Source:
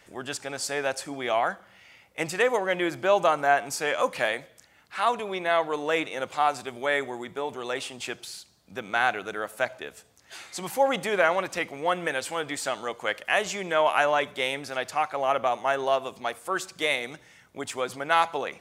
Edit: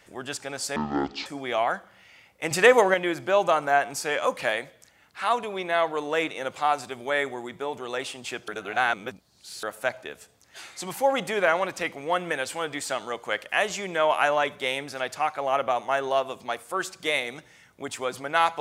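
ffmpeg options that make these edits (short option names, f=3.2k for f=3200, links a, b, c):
-filter_complex "[0:a]asplit=7[a][b][c][d][e][f][g];[a]atrim=end=0.764[h];[b]atrim=start=0.76:end=1.02,asetpts=PTS-STARTPTS,asetrate=22932,aresample=44100[i];[c]atrim=start=1.016:end=2.272[j];[d]atrim=start=2.268:end=2.702,asetpts=PTS-STARTPTS,volume=7dB[k];[e]atrim=start=2.698:end=8.242[l];[f]atrim=start=8.238:end=9.392,asetpts=PTS-STARTPTS,areverse[m];[g]atrim=start=9.388[n];[h][i]acrossfade=d=0.004:c1=hsin:c2=hsin[o];[o][j]acrossfade=d=0.004:c1=hsin:c2=hsin[p];[p][k]acrossfade=d=0.004:c1=hsin:c2=hsin[q];[q][l]acrossfade=d=0.004:c1=hsin:c2=hsin[r];[r][m]acrossfade=d=0.004:c1=hsin:c2=hsin[s];[s][n]acrossfade=d=0.004:c1=hsin:c2=hsin"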